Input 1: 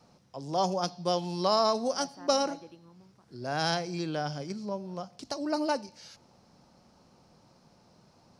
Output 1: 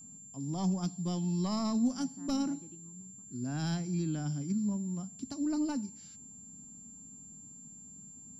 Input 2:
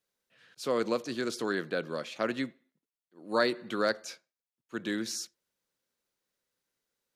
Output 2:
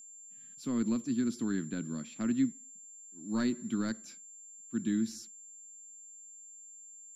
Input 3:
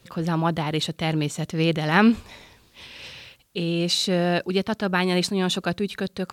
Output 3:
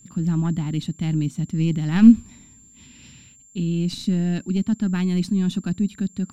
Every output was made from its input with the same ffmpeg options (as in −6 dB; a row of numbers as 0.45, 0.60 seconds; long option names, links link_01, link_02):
-af "aeval=exprs='0.562*(cos(1*acos(clip(val(0)/0.562,-1,1)))-cos(1*PI/2))+0.282*(cos(2*acos(clip(val(0)/0.562,-1,1)))-cos(2*PI/2))+0.0501*(cos(5*acos(clip(val(0)/0.562,-1,1)))-cos(5*PI/2))+0.0158*(cos(7*acos(clip(val(0)/0.562,-1,1)))-cos(7*PI/2))+0.00891*(cos(8*acos(clip(val(0)/0.562,-1,1)))-cos(8*PI/2))':channel_layout=same,aeval=exprs='val(0)+0.0158*sin(2*PI*7300*n/s)':channel_layout=same,lowshelf=frequency=350:width_type=q:width=3:gain=12,volume=-13dB"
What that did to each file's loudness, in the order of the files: −3.5, −1.5, +2.0 LU